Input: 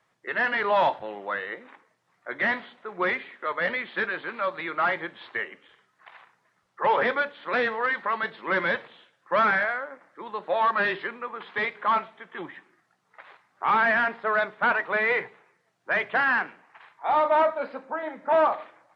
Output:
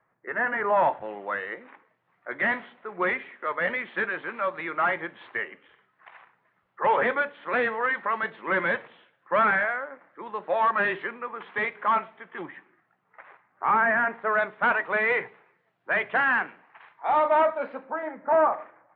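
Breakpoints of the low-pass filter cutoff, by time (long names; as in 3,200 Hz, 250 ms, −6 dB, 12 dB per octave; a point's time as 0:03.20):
low-pass filter 24 dB per octave
0:00.67 1,900 Hz
0:01.21 2,900 Hz
0:12.36 2,900 Hz
0:13.97 2,000 Hz
0:14.51 3,200 Hz
0:17.79 3,200 Hz
0:18.20 2,000 Hz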